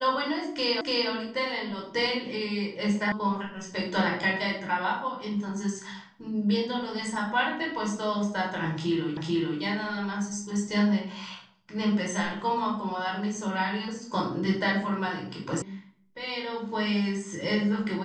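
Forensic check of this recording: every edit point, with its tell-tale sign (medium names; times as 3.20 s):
0.81 s: repeat of the last 0.29 s
3.12 s: sound stops dead
9.17 s: repeat of the last 0.44 s
15.62 s: sound stops dead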